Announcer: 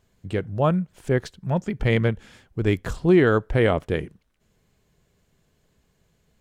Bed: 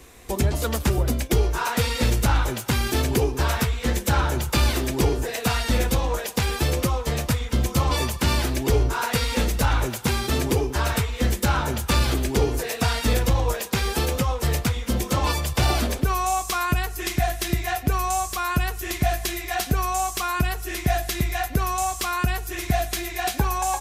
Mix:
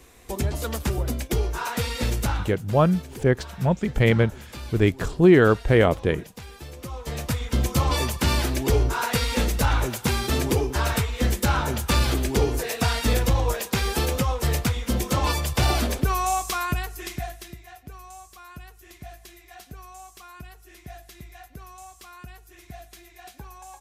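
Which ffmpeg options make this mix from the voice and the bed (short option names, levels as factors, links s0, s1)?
-filter_complex "[0:a]adelay=2150,volume=1.26[s0];[1:a]volume=4.47,afade=t=out:st=2.26:d=0.3:silence=0.211349,afade=t=in:st=6.78:d=0.8:silence=0.141254,afade=t=out:st=16.32:d=1.25:silence=0.112202[s1];[s0][s1]amix=inputs=2:normalize=0"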